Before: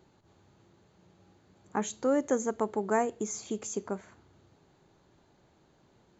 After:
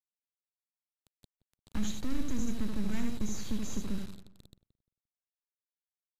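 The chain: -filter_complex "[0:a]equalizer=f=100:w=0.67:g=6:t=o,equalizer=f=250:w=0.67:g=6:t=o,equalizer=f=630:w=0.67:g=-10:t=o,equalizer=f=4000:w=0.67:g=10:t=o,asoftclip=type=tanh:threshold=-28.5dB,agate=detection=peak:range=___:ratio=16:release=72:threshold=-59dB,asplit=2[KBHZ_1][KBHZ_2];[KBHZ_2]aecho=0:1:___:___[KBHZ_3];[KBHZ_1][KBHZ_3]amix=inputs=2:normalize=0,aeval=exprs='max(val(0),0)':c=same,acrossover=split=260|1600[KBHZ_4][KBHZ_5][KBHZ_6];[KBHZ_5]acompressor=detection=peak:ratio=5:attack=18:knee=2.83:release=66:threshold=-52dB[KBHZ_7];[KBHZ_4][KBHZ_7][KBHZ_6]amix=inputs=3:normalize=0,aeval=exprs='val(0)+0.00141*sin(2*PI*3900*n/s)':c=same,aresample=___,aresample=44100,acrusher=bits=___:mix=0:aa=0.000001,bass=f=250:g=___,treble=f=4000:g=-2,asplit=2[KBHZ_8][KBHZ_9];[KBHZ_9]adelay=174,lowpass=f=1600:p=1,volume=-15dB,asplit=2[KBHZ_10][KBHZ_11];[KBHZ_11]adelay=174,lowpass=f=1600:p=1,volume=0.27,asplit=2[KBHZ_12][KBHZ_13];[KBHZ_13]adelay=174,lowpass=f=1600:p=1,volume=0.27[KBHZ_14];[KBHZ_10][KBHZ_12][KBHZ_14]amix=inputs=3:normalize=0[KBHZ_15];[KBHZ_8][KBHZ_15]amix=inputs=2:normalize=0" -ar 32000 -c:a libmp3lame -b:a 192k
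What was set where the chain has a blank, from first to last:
-7dB, 76, 0.531, 16000, 7, 12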